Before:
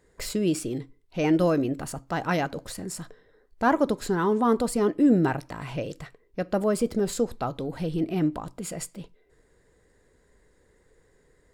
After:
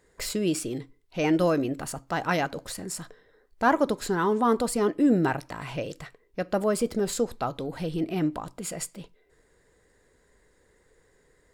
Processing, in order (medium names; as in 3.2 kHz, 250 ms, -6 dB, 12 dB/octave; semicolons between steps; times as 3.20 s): bass shelf 490 Hz -5 dB; trim +2 dB